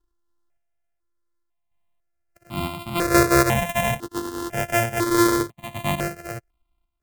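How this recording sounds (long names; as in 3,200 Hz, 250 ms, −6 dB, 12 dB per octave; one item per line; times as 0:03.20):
a buzz of ramps at a fixed pitch in blocks of 128 samples
sample-and-hold tremolo
notches that jump at a steady rate 2 Hz 630–1,700 Hz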